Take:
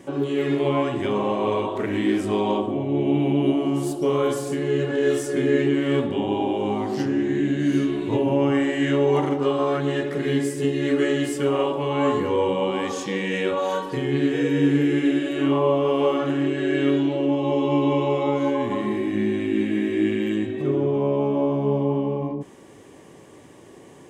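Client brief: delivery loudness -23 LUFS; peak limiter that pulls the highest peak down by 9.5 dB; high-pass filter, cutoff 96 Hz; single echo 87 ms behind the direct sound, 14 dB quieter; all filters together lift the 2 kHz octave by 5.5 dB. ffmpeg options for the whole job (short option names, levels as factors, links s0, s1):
-af "highpass=96,equalizer=f=2000:t=o:g=6.5,alimiter=limit=0.158:level=0:latency=1,aecho=1:1:87:0.2,volume=1.19"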